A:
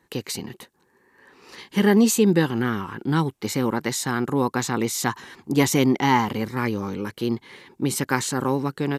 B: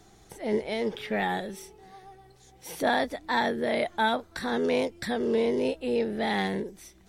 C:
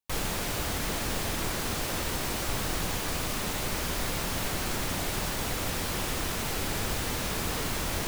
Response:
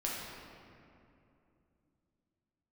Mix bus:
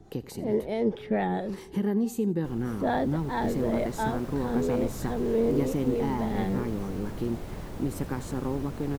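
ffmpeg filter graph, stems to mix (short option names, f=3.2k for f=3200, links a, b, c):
-filter_complex "[0:a]agate=range=-33dB:threshold=-46dB:ratio=3:detection=peak,acompressor=threshold=-39dB:ratio=2,highshelf=f=10k:g=12,volume=-4dB,asplit=3[a][b][c];[b]volume=-19dB[d];[1:a]acrossover=split=440[e][f];[e]aeval=exprs='val(0)*(1-0.5/2+0.5/2*cos(2*PI*4.6*n/s))':c=same[g];[f]aeval=exprs='val(0)*(1-0.5/2-0.5/2*cos(2*PI*4.6*n/s))':c=same[h];[g][h]amix=inputs=2:normalize=0,volume=-1dB[i];[2:a]dynaudnorm=f=110:g=17:m=7dB,adelay=2350,volume=-19dB[j];[c]apad=whole_len=316780[k];[i][k]sidechaincompress=threshold=-35dB:ratio=8:attack=16:release=1170[l];[d]aecho=0:1:85|170|255|340:1|0.27|0.0729|0.0197[m];[a][l][j][m]amix=inputs=4:normalize=0,tiltshelf=f=1.1k:g=9"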